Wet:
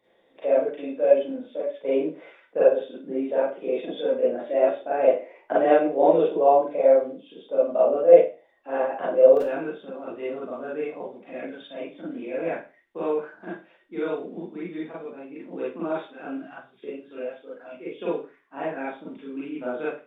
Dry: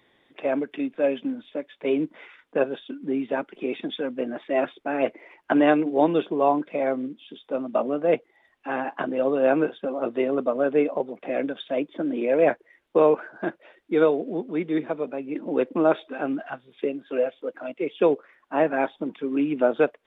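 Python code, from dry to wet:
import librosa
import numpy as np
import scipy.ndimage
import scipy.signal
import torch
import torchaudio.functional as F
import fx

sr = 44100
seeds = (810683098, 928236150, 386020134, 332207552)

y = fx.peak_eq(x, sr, hz=550.0, db=fx.steps((0.0, 14.0), (9.37, -3.5)), octaves=0.96)
y = fx.rev_schroeder(y, sr, rt60_s=0.33, comb_ms=33, drr_db=-8.0)
y = F.gain(torch.from_numpy(y), -14.5).numpy()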